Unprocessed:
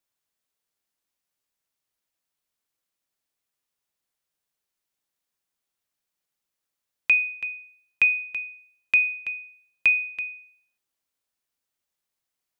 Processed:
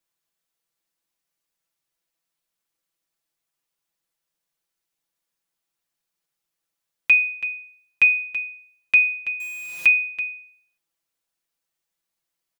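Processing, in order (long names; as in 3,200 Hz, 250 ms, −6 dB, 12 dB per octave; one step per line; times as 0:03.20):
0:09.40–0:09.86: converter with a step at zero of −32.5 dBFS
comb filter 6 ms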